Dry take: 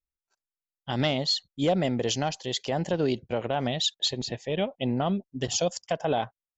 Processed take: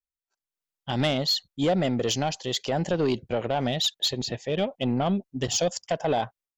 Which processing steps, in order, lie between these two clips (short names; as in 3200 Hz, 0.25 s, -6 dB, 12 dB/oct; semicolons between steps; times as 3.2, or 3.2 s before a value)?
AGC gain up to 13.5 dB; soft clip -7 dBFS, distortion -18 dB; gain -9 dB